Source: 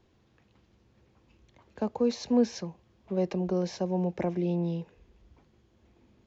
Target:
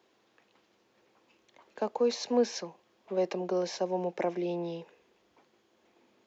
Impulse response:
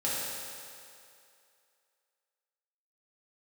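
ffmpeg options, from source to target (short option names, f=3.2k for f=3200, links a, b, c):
-af "highpass=410,volume=3dB"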